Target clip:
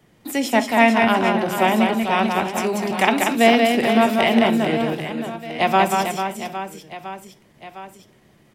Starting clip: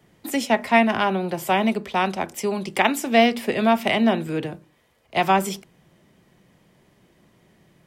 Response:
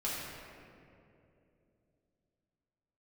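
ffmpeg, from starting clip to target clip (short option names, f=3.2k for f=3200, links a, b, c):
-filter_complex "[0:a]aecho=1:1:170|408|741.2|1208|1861:0.631|0.398|0.251|0.158|0.1,atempo=0.92,asplit=2[a][b];[1:a]atrim=start_sample=2205,atrim=end_sample=3528[c];[b][c]afir=irnorm=-1:irlink=0,volume=-12.5dB[d];[a][d]amix=inputs=2:normalize=0"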